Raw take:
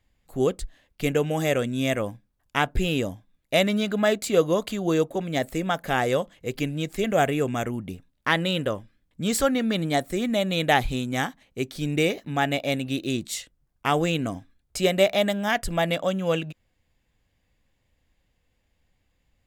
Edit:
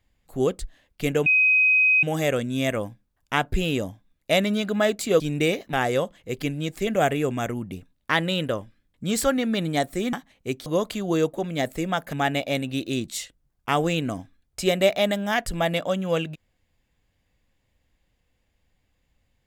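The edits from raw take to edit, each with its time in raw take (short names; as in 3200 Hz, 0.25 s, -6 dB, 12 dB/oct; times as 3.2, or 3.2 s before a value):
1.26 add tone 2520 Hz -15 dBFS 0.77 s
4.43–5.9 swap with 11.77–12.3
10.3–11.24 cut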